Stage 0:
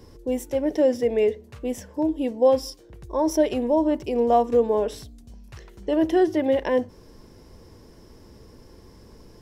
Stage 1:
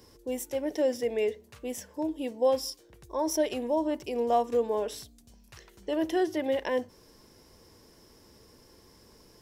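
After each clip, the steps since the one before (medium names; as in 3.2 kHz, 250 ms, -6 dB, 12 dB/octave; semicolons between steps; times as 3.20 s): tilt EQ +2 dB/octave; trim -5 dB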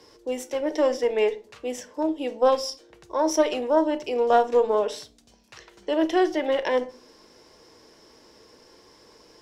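Chebyshev shaper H 2 -11 dB, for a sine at -14 dBFS; three-band isolator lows -13 dB, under 290 Hz, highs -16 dB, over 7.2 kHz; simulated room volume 250 m³, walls furnished, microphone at 0.53 m; trim +6 dB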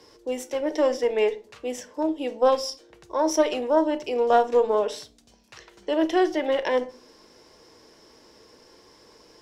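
no audible change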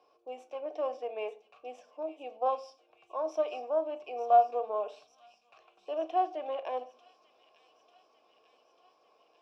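vowel filter a; feedback echo behind a high-pass 894 ms, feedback 68%, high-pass 3.9 kHz, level -8.5 dB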